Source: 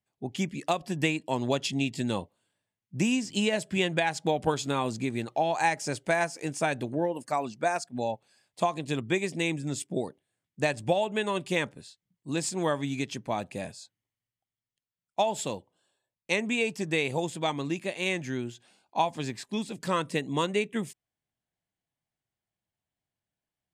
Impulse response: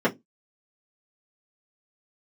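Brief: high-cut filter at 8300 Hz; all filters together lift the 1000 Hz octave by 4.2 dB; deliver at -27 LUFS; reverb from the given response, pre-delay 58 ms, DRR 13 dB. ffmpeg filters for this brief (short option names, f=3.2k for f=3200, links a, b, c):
-filter_complex "[0:a]lowpass=8.3k,equalizer=f=1k:t=o:g=5.5,asplit=2[a][b];[1:a]atrim=start_sample=2205,adelay=58[c];[b][c]afir=irnorm=-1:irlink=0,volume=-28.5dB[d];[a][d]amix=inputs=2:normalize=0,volume=1dB"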